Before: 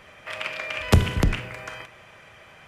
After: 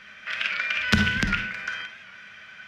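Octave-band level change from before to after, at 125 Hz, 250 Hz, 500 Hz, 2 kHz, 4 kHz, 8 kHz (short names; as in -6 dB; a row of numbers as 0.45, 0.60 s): -8.0, 0.0, -10.0, +7.5, +4.0, -2.0 dB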